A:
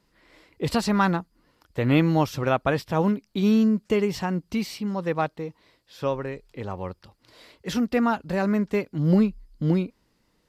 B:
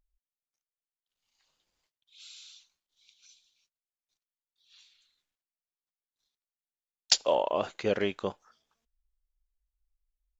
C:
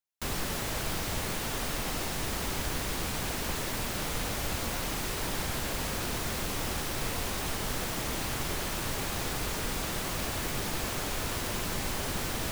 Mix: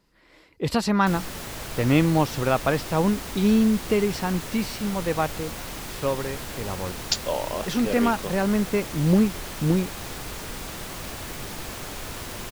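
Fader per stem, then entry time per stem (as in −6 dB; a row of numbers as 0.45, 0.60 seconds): +0.5, −1.5, −2.0 decibels; 0.00, 0.00, 0.85 seconds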